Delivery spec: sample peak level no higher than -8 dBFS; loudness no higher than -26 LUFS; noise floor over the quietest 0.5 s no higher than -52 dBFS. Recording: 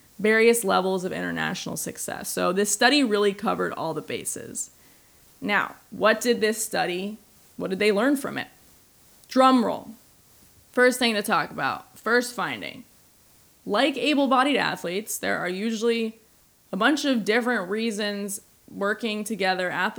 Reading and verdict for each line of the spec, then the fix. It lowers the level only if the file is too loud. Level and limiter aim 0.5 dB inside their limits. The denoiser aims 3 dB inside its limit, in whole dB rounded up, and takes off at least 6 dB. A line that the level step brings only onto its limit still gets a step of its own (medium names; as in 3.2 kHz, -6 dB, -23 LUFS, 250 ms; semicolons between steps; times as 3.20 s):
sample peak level -5.0 dBFS: fail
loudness -24.0 LUFS: fail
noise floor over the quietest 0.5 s -58 dBFS: pass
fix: trim -2.5 dB; peak limiter -8.5 dBFS